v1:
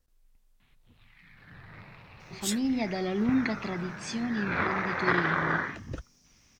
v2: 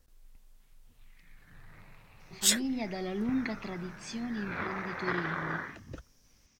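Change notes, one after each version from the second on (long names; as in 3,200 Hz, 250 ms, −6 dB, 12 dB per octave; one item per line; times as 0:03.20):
speech −5.0 dB
first sound −7.5 dB
second sound +8.0 dB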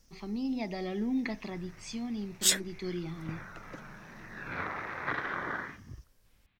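speech: entry −2.20 s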